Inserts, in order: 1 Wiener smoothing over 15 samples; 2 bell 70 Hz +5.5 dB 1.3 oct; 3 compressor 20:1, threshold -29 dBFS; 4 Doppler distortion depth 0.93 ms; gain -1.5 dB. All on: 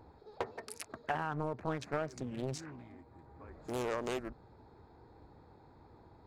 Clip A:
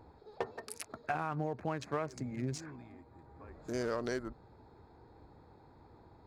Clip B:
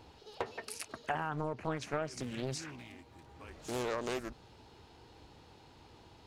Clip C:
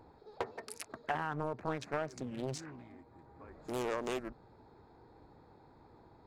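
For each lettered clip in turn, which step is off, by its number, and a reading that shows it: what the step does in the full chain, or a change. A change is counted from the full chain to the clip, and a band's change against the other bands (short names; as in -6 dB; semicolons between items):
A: 4, 4 kHz band -1.5 dB; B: 1, 4 kHz band +4.5 dB; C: 2, 125 Hz band -2.5 dB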